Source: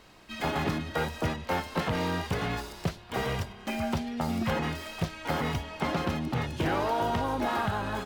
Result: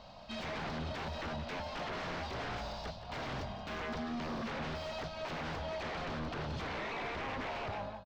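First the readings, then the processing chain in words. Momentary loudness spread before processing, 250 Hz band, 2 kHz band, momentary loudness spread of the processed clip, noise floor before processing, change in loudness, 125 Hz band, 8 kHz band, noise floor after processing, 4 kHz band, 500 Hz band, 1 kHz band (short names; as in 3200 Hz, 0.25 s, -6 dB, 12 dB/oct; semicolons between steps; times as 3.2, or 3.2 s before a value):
6 LU, -11.0 dB, -7.0 dB, 3 LU, -48 dBFS, -9.0 dB, -11.0 dB, -11.0 dB, -48 dBFS, -6.0 dB, -8.0 dB, -9.0 dB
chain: ending faded out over 0.82 s; EQ curve 240 Hz 0 dB, 370 Hz -19 dB, 600 Hz +9 dB, 1900 Hz -9 dB, 4600 Hz +7 dB, 9400 Hz -2 dB, 16000 Hz +12 dB; compressor 5:1, threshold -31 dBFS, peak gain reduction 9.5 dB; wavefolder -36 dBFS; air absorption 180 m; echo 0.175 s -12 dB; gain +2.5 dB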